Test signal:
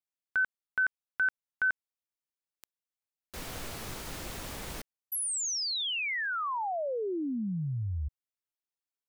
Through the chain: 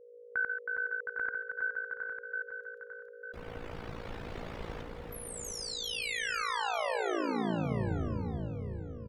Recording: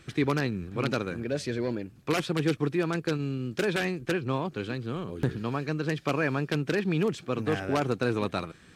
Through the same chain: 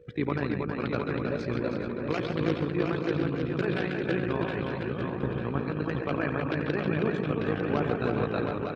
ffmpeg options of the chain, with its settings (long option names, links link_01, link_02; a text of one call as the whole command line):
ffmpeg -i in.wav -filter_complex "[0:a]aeval=exprs='val(0)+0.00398*sin(2*PI*480*n/s)':channel_layout=same,lowpass=frequency=2800:poles=1,asplit=2[link_01][link_02];[link_02]aecho=0:1:85|137|319|417|715:0.211|0.473|0.596|0.355|0.562[link_03];[link_01][link_03]amix=inputs=2:normalize=0,tremolo=f=56:d=0.71,afftdn=noise_reduction=16:noise_floor=-51,asplit=2[link_04][link_05];[link_05]aecho=0:1:899|1798|2697:0.355|0.0603|0.0103[link_06];[link_04][link_06]amix=inputs=2:normalize=0" out.wav